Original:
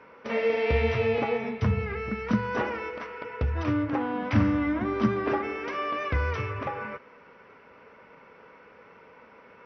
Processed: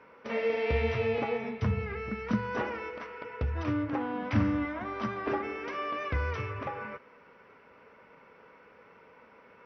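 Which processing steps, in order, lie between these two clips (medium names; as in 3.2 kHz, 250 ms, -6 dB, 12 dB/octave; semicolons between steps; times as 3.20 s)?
4.65–5.27 s: resonant low shelf 480 Hz -6.5 dB, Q 1.5; trim -4 dB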